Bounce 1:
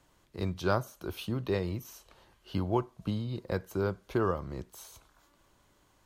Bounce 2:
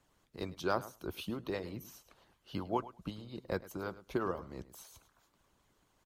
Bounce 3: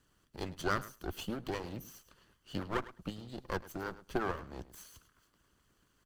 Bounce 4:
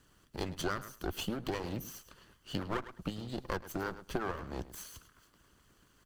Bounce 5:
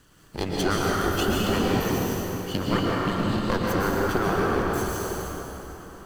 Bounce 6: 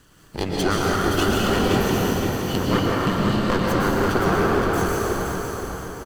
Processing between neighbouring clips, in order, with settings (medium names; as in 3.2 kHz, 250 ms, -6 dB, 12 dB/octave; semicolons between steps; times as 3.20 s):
feedback delay 105 ms, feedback 16%, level -14 dB; harmonic-percussive split harmonic -15 dB; trim -1.5 dB
comb filter that takes the minimum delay 0.65 ms; trim +2 dB
compression 5:1, threshold -38 dBFS, peak gain reduction 11 dB; trim +6 dB
plate-style reverb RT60 4.1 s, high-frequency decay 0.6×, pre-delay 105 ms, DRR -5 dB; trim +8 dB
self-modulated delay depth 0.064 ms; feedback delay 521 ms, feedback 40%, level -6 dB; trim +3 dB